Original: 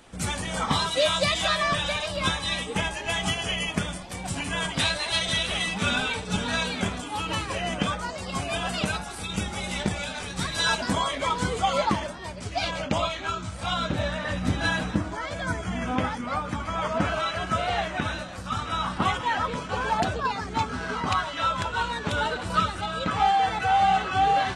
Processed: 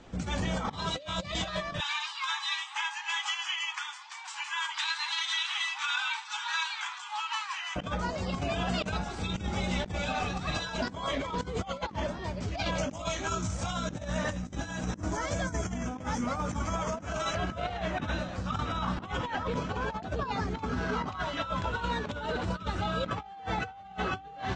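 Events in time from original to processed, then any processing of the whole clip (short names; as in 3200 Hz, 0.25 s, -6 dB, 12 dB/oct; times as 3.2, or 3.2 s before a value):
1.8–7.76 steep high-pass 850 Hz 96 dB/oct
10.08–10.63 small resonant body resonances 760/1200/2600 Hz, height 14 dB
12.78–17.35 band shelf 7500 Hz +13.5 dB 1.1 oct
whole clip: steep low-pass 7400 Hz 48 dB/oct; tilt shelf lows +4 dB, about 730 Hz; negative-ratio compressor -29 dBFS, ratio -0.5; gain -3 dB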